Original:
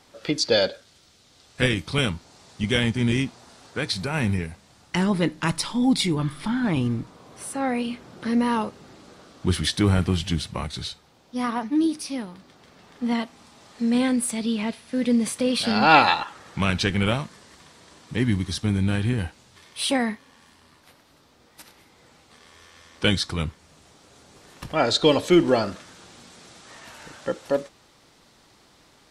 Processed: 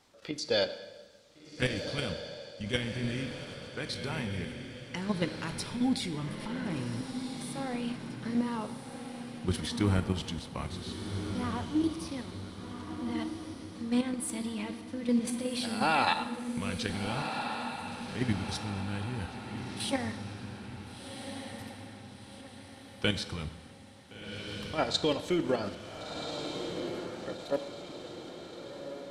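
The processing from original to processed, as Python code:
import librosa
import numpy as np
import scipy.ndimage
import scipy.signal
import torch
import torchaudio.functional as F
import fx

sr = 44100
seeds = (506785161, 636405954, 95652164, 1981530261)

y = fx.level_steps(x, sr, step_db=10)
y = fx.echo_diffused(y, sr, ms=1446, feedback_pct=47, wet_db=-6.5)
y = fx.rev_plate(y, sr, seeds[0], rt60_s=1.4, hf_ratio=0.9, predelay_ms=0, drr_db=11.0)
y = y * librosa.db_to_amplitude(-6.0)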